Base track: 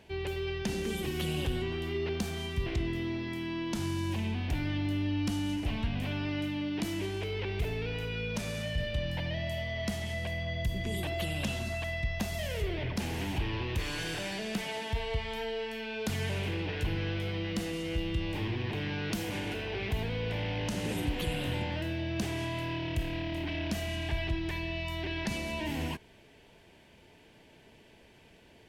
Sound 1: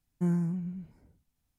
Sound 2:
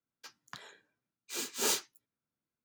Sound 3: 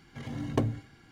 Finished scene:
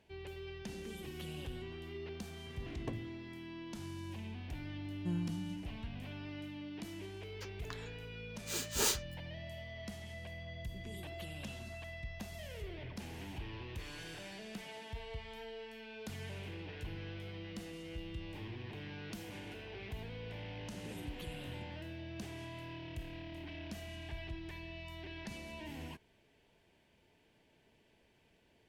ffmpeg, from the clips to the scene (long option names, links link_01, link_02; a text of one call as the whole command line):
ffmpeg -i bed.wav -i cue0.wav -i cue1.wav -i cue2.wav -filter_complex "[0:a]volume=-12dB[link_01];[3:a]atrim=end=1.11,asetpts=PTS-STARTPTS,volume=-14.5dB,afade=type=in:duration=0.004:curve=hsin,afade=type=out:start_time=1.106:duration=0.004:curve=hsin,adelay=2300[link_02];[1:a]atrim=end=1.58,asetpts=PTS-STARTPTS,volume=-9.5dB,afade=type=in:duration=0.004:curve=hsin,afade=type=out:start_time=1.576:duration=0.004:curve=hsin,adelay=4840[link_03];[2:a]atrim=end=2.64,asetpts=PTS-STARTPTS,volume=-1.5dB,afade=type=in:duration=0.004:curve=hsin,afade=type=out:start_time=2.636:duration=0.004:curve=hsin,adelay=7170[link_04];[link_01][link_02][link_03][link_04]amix=inputs=4:normalize=0" out.wav